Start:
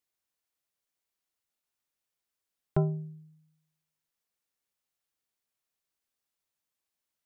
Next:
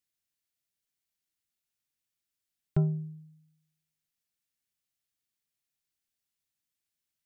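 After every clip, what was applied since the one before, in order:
octave-band graphic EQ 125/500/1,000 Hz +3/−7/−9 dB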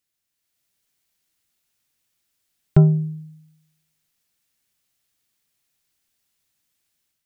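automatic gain control gain up to 7 dB
level +6 dB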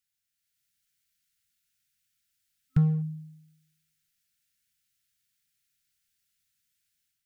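brick-wall band-stop 260–1,300 Hz
parametric band 310 Hz −6.5 dB 1.4 octaves
in parallel at −3 dB: hard clipping −24 dBFS, distortion −4 dB
on the sum: level −8.5 dB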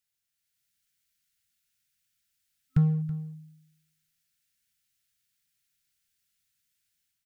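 single-tap delay 327 ms −17 dB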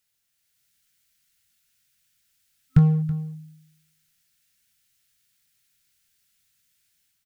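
double-tracking delay 23 ms −12 dB
level +8 dB

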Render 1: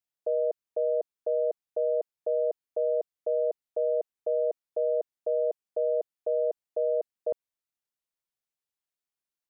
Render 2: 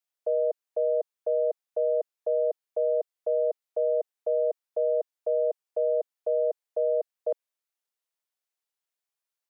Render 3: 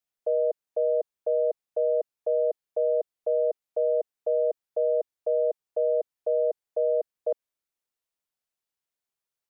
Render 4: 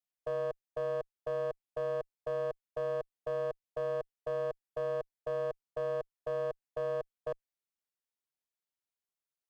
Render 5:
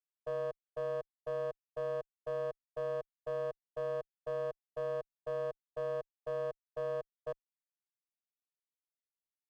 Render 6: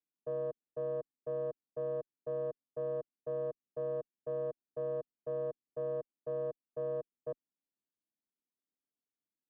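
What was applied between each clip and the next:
high-pass filter 400 Hz 24 dB per octave; level +2 dB
low-shelf EQ 360 Hz +8 dB; level −1.5 dB
asymmetric clip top −25.5 dBFS, bottom −18 dBFS; level −8 dB
expander for the loud parts 2.5 to 1, over −44 dBFS; level −2 dB
resonant band-pass 260 Hz, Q 2.3; level +11.5 dB

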